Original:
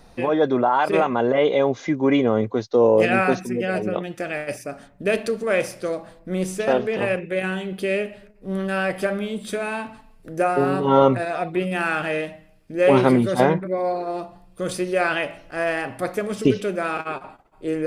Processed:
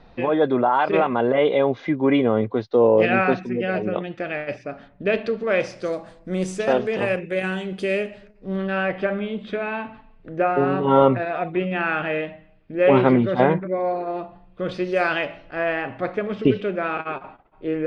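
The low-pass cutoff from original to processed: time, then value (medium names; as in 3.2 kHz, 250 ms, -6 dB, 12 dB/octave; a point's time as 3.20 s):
low-pass 24 dB/octave
5.41 s 3.9 kHz
5.96 s 8.1 kHz
8.03 s 8.1 kHz
8.84 s 3.3 kHz
14.66 s 3.3 kHz
14.98 s 6.7 kHz
15.65 s 3.4 kHz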